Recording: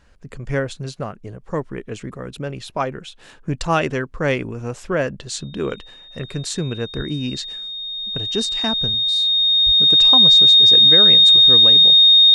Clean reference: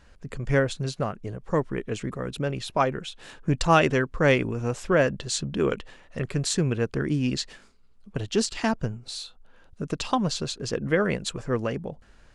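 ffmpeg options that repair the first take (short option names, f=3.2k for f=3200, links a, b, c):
-filter_complex "[0:a]bandreject=f=3.7k:w=30,asplit=3[a][b][c];[a]afade=t=out:st=6.96:d=0.02[d];[b]highpass=f=140:w=0.5412,highpass=f=140:w=1.3066,afade=t=in:st=6.96:d=0.02,afade=t=out:st=7.08:d=0.02[e];[c]afade=t=in:st=7.08:d=0.02[f];[d][e][f]amix=inputs=3:normalize=0,asplit=3[g][h][i];[g]afade=t=out:st=9.65:d=0.02[j];[h]highpass=f=140:w=0.5412,highpass=f=140:w=1.3066,afade=t=in:st=9.65:d=0.02,afade=t=out:st=9.77:d=0.02[k];[i]afade=t=in:st=9.77:d=0.02[l];[j][k][l]amix=inputs=3:normalize=0"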